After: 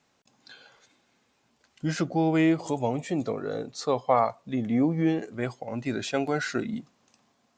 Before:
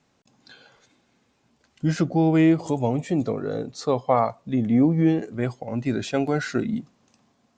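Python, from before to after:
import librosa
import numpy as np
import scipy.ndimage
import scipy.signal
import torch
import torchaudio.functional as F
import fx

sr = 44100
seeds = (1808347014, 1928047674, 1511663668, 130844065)

y = fx.low_shelf(x, sr, hz=380.0, db=-8.0)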